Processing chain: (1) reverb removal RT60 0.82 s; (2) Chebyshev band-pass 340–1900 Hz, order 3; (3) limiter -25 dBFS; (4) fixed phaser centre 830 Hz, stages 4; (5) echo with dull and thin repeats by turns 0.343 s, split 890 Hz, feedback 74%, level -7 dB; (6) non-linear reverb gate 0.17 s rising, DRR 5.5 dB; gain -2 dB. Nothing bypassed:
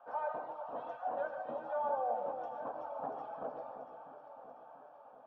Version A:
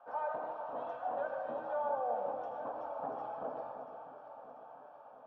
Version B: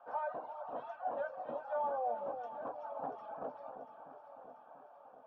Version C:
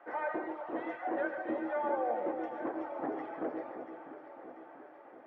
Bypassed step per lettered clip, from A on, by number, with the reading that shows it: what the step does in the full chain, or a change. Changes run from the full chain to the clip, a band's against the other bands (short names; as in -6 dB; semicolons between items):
1, momentary loudness spread change -2 LU; 6, echo-to-direct -3.0 dB to -7.5 dB; 4, 250 Hz band +13.0 dB